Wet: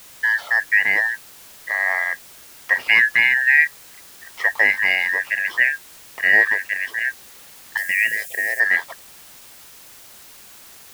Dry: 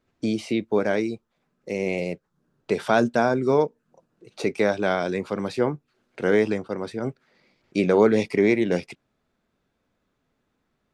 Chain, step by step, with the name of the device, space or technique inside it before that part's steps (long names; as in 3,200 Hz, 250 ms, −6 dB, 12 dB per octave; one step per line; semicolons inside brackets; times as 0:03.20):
split-band scrambled radio (band-splitting scrambler in four parts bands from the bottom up 2143; band-pass filter 380–3,200 Hz; white noise bed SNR 24 dB)
0:07.77–0:08.60: drawn EQ curve 140 Hz 0 dB, 670 Hz −10 dB, 990 Hz −30 dB, 2,500 Hz +1 dB, 3,800 Hz −5 dB, 8,000 Hz +9 dB
level +5.5 dB